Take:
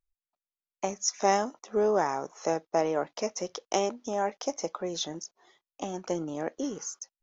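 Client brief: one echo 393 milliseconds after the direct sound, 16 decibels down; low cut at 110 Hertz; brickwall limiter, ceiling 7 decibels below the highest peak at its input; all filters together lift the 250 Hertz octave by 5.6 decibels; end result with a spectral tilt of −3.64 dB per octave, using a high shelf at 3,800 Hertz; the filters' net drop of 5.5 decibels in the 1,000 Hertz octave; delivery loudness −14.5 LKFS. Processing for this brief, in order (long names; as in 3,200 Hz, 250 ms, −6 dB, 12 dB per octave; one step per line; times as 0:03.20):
high-pass filter 110 Hz
parametric band 250 Hz +8.5 dB
parametric band 1,000 Hz −9 dB
high-shelf EQ 3,800 Hz +5.5 dB
brickwall limiter −18.5 dBFS
single-tap delay 393 ms −16 dB
level +17 dB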